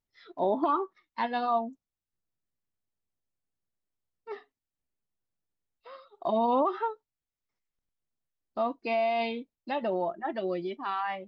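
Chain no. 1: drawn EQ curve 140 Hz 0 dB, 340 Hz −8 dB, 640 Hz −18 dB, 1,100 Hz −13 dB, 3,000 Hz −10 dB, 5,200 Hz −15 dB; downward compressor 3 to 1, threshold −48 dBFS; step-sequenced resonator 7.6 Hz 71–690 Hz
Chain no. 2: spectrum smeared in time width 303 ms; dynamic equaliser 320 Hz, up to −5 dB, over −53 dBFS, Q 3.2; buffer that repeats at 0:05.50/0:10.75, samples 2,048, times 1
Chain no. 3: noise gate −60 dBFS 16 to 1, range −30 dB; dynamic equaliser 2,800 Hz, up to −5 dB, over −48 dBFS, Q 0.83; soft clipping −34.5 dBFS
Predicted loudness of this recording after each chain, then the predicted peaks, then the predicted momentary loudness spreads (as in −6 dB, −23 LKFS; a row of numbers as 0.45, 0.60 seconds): −62.0, −35.5, −39.0 LKFS; −43.5, −20.5, −34.5 dBFS; 12, 20, 14 LU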